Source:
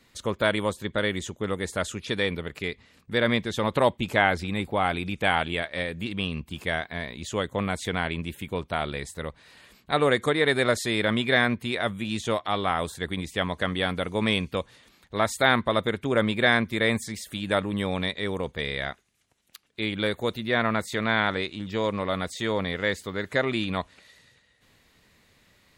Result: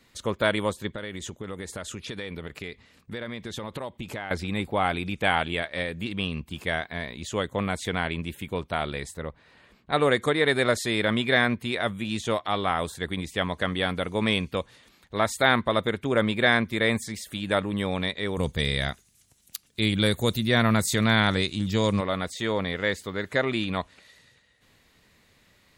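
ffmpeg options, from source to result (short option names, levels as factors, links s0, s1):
-filter_complex "[0:a]asettb=1/sr,asplit=3[s0][s1][s2];[s0]atrim=end=0.954[s3];[s1]atrim=start=0.95:end=4.31,asetpts=PTS-STARTPTS,afade=t=in:d=0.004:c=qsin,afade=t=out:st=3.356:d=0.004:c=qsin,acompressor=threshold=0.0282:ratio=6:attack=3.2:release=140:knee=1:detection=peak[s4];[s2]atrim=start=4.306[s5];[s3][s4]acrossfade=d=0.004:c1=hsin:c2=qsin[s6];[s6][s5]acrossfade=d=0.004:c1=qsin:c2=hsin,asplit=3[s7][s8][s9];[s7]afade=t=out:st=9.16:d=0.02[s10];[s8]lowpass=f=1700:p=1,afade=t=in:st=9.16:d=0.02,afade=t=out:st=9.92:d=0.02[s11];[s9]afade=t=in:st=9.92:d=0.02[s12];[s10][s11][s12]amix=inputs=3:normalize=0,asettb=1/sr,asplit=3[s13][s14][s15];[s13]atrim=end=18.374[s16];[s14]atrim=start=18.37:end=22.01,asetpts=PTS-STARTPTS,afade=t=in:d=0.004:c=qsin,afade=t=out:st=3.636:d=0.004:c=qsin,bass=f=250:g=10,treble=f=4000:g=14[s17];[s15]atrim=start=22.006[s18];[s16][s17]acrossfade=d=0.004:c1=hsin:c2=qsin[s19];[s19][s18]acrossfade=d=0.004:c1=qsin:c2=hsin"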